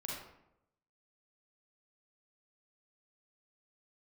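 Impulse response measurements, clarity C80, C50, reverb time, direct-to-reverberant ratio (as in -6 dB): 4.0 dB, -0.5 dB, 0.85 s, -4.0 dB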